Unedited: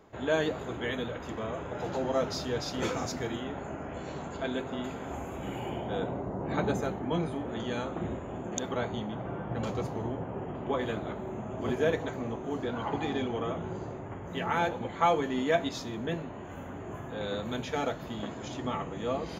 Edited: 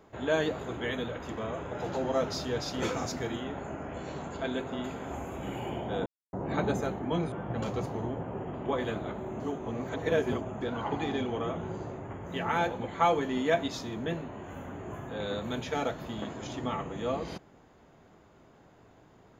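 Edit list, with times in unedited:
6.06–6.33 mute
7.32–9.33 cut
11.41–12.62 reverse

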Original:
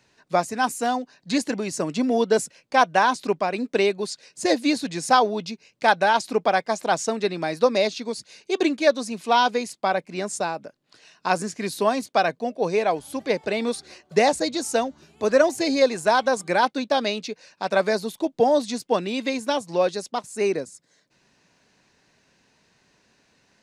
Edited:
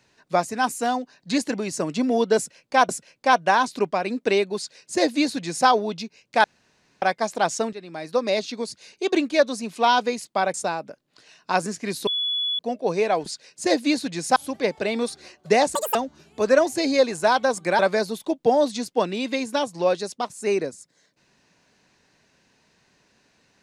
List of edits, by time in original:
2.37–2.89 loop, 2 plays
4.05–5.15 copy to 13.02
5.92–6.5 room tone
7.21–7.99 fade in, from -16.5 dB
10.02–10.3 cut
11.83–12.35 bleep 3410 Hz -22 dBFS
14.41–14.78 speed 184%
16.62–17.73 cut

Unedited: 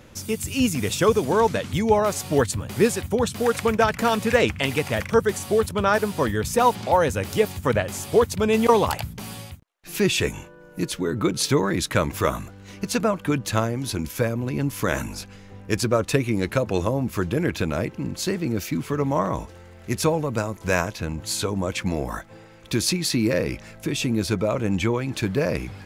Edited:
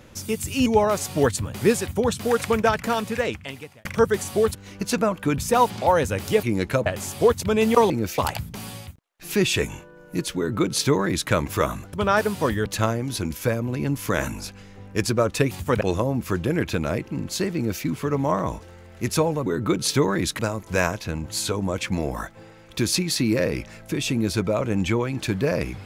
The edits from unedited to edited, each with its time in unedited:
0.66–1.81 cut
3.73–5 fade out
5.7–6.43 swap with 12.57–13.4
7.48–7.78 swap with 16.25–16.68
11.01–11.94 copy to 20.33
18.43–18.71 copy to 8.82

